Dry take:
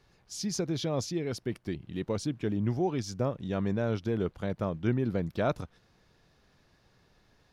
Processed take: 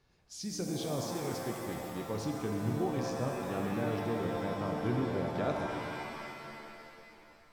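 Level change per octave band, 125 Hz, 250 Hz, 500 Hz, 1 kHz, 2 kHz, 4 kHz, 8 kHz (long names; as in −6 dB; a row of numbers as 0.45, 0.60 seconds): −4.5, −3.5, −2.5, +2.5, +1.0, −3.0, −3.0 decibels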